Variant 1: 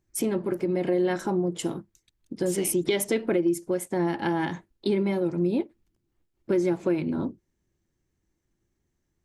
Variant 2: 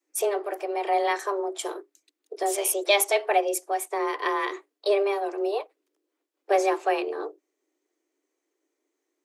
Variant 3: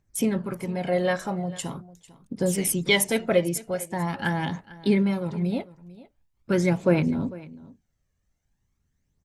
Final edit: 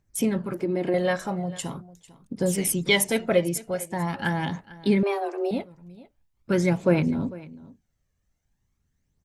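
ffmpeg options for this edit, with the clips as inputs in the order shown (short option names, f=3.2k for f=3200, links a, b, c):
-filter_complex "[2:a]asplit=3[a][b][c];[a]atrim=end=0.542[d];[0:a]atrim=start=0.538:end=0.942[e];[b]atrim=start=0.938:end=5.032[f];[1:a]atrim=start=5.028:end=5.512[g];[c]atrim=start=5.508[h];[d][e]acrossfade=d=0.004:c1=hsin:c2=hsin[i];[i][f]acrossfade=d=0.004:c1=hsin:c2=hsin[j];[j][g]acrossfade=d=0.004:c1=hsin:c2=hsin[k];[k][h]acrossfade=d=0.004:c1=hsin:c2=hsin"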